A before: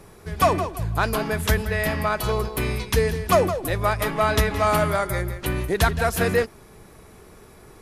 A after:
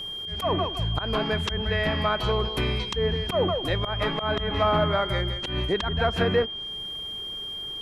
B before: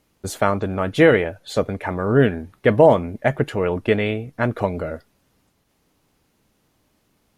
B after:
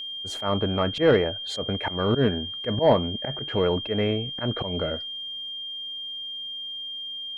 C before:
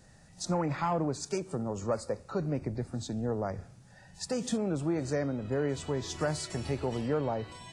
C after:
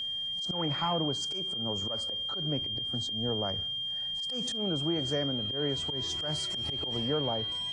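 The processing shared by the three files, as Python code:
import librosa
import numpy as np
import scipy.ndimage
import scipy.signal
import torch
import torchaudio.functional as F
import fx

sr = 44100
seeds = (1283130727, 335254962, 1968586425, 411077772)

y = fx.env_lowpass_down(x, sr, base_hz=1600.0, full_db=-16.5)
y = fx.auto_swell(y, sr, attack_ms=122.0)
y = y + 10.0 ** (-31.0 / 20.0) * np.sin(2.0 * np.pi * 3200.0 * np.arange(len(y)) / sr)
y = 10.0 ** (-7.0 / 20.0) * np.tanh(y / 10.0 ** (-7.0 / 20.0))
y = F.gain(torch.from_numpy(y), -1.0).numpy()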